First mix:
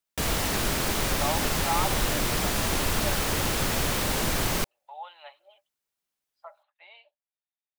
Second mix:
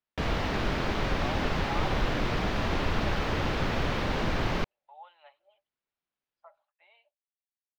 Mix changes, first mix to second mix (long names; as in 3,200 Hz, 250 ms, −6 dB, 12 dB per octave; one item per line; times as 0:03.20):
speech −7.5 dB
master: add high-frequency loss of the air 250 metres